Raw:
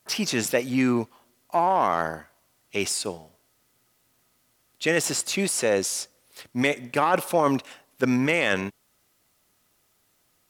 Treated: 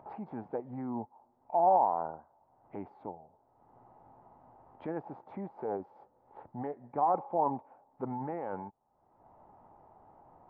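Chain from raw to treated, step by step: four-pole ladder low-pass 990 Hz, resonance 80%; upward compressor, threshold -35 dBFS; formant shift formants -2 st; trim -3 dB

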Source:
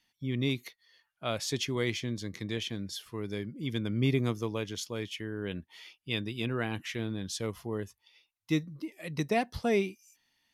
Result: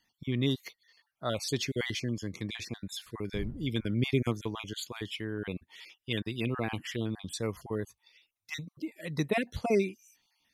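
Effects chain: random holes in the spectrogram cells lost 33%; 3.33–3.89 s: wind noise 87 Hz -43 dBFS; trim +1.5 dB

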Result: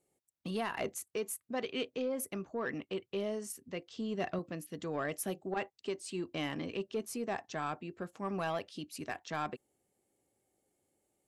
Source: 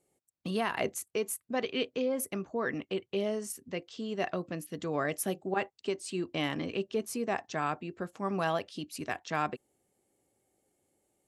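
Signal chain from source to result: 3.90–4.39 s: bass shelf 210 Hz +9 dB; saturation -21.5 dBFS, distortion -19 dB; trim -3.5 dB

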